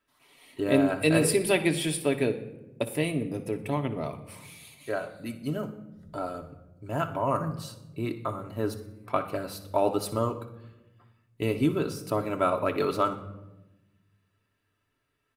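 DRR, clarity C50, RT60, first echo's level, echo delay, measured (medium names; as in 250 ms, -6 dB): 3.5 dB, 11.5 dB, 1.0 s, -15.0 dB, 61 ms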